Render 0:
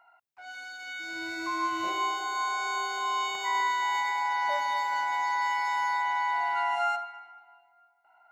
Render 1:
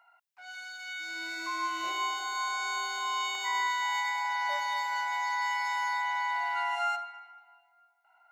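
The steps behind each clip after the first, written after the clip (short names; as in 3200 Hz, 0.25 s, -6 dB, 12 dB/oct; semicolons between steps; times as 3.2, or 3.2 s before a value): tilt shelf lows -6.5 dB, about 760 Hz; gain -5 dB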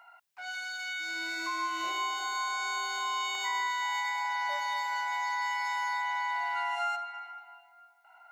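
compressor 2:1, threshold -44 dBFS, peak gain reduction 9.5 dB; gain +7.5 dB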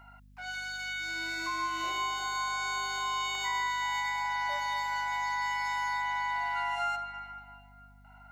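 hum 50 Hz, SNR 23 dB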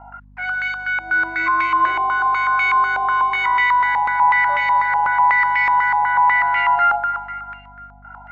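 in parallel at -11.5 dB: one-sided clip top -39 dBFS; on the sum: stepped low-pass 8.1 Hz 830–2300 Hz; gain +8 dB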